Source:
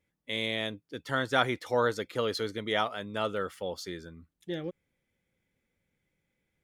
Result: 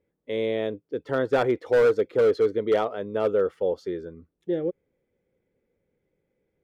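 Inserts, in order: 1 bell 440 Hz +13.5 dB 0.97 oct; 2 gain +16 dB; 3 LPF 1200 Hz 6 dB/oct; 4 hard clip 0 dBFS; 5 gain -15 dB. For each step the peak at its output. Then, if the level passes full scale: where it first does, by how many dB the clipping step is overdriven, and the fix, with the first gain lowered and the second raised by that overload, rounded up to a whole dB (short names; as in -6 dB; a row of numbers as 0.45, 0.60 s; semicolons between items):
-7.5, +8.5, +7.5, 0.0, -15.0 dBFS; step 2, 7.5 dB; step 2 +8 dB, step 5 -7 dB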